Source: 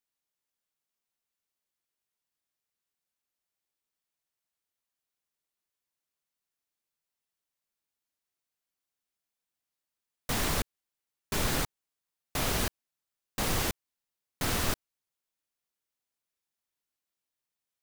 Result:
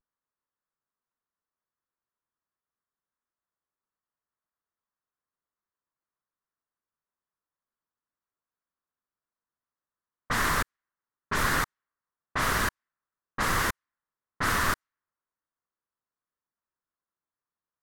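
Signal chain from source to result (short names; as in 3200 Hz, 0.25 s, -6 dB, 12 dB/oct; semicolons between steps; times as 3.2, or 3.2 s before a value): vibrato 0.39 Hz 36 cents; low-pass opened by the level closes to 910 Hz, open at -26.5 dBFS; band shelf 1400 Hz +11 dB 1.2 oct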